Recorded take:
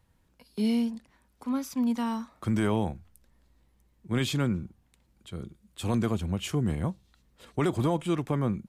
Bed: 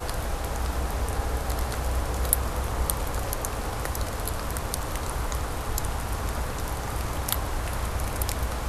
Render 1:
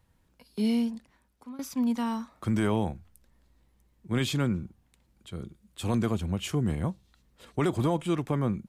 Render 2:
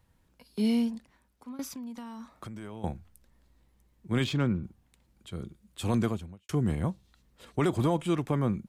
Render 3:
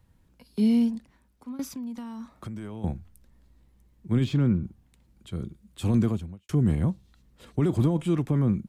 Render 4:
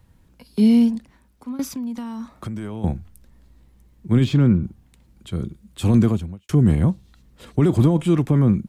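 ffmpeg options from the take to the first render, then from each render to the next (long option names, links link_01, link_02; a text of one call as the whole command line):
ffmpeg -i in.wav -filter_complex "[0:a]asplit=2[link_01][link_02];[link_01]atrim=end=1.59,asetpts=PTS-STARTPTS,afade=type=out:start_time=0.87:duration=0.72:curve=qsin:silence=0.0944061[link_03];[link_02]atrim=start=1.59,asetpts=PTS-STARTPTS,afade=type=in:duration=0.004:curve=hsin:silence=0.0944061[link_04];[link_03][link_04]concat=n=2:v=0:a=1" out.wav
ffmpeg -i in.wav -filter_complex "[0:a]asettb=1/sr,asplit=3[link_01][link_02][link_03];[link_01]atrim=end=1.674[link_04];[link_02]atrim=start=1.67:end=2.84,asetpts=PTS-STARTPTS,afade=type=in:duration=0.004:curve=qsin,afade=type=out:start_time=1.166:duration=0.004:curve=qsin,acompressor=threshold=-37dB:ratio=16:attack=3.2:release=140:knee=1:detection=peak[link_05];[link_03]atrim=start=2.836[link_06];[link_04][link_05]acrossfade=duration=0.004:curve1=hsin:curve2=qsin[link_07];[link_07][link_06]acrossfade=duration=0.004:curve1=qsin:curve2=hsin,asettb=1/sr,asplit=3[link_08][link_09][link_10];[link_08]atrim=end=4.244[link_11];[link_09]atrim=start=4.24:end=4.64,asetpts=PTS-STARTPTS,afade=type=in:duration=0.004:curve=qsin,afade=type=out:start_time=0.396:duration=0.004:curve=qsin,adynamicsmooth=sensitivity=3.5:basefreq=3300[link_12];[link_10]atrim=start=4.636[link_13];[link_11][link_12]acrossfade=duration=0.004:curve1=hsin:curve2=qsin[link_14];[link_14][link_13]acrossfade=duration=0.004:curve1=qsin:curve2=hsin,asplit=2[link_15][link_16];[link_15]atrim=end=6.49,asetpts=PTS-STARTPTS,afade=type=out:start_time=6.05:duration=0.44:curve=qua[link_17];[link_16]atrim=start=6.49,asetpts=PTS-STARTPTS,afade=type=in:duration=0.004:curve=hsin[link_18];[link_17][link_18]concat=n=2:v=0:a=1" out.wav
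ffmpeg -i in.wav -filter_complex "[0:a]acrossover=split=340[link_01][link_02];[link_01]acontrast=48[link_03];[link_02]alimiter=level_in=6.5dB:limit=-24dB:level=0:latency=1:release=16,volume=-6.5dB[link_04];[link_03][link_04]amix=inputs=2:normalize=0" out.wav
ffmpeg -i in.wav -af "volume=7dB" out.wav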